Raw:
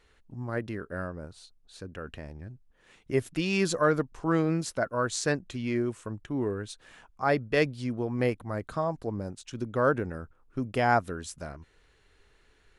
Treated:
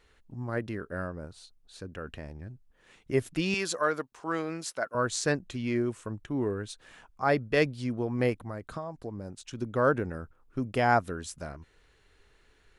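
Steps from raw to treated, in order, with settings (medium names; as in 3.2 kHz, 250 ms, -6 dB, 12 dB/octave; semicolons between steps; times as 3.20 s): 3.54–4.95 s: high-pass 730 Hz 6 dB/octave; 8.43–9.62 s: compression 6:1, threshold -34 dBFS, peak gain reduction 9.5 dB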